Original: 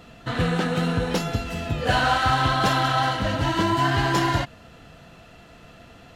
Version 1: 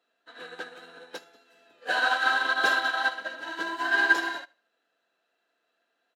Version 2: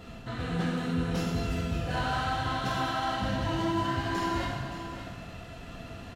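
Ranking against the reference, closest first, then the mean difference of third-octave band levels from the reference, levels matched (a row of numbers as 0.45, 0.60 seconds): 2, 1; 6.0, 14.0 decibels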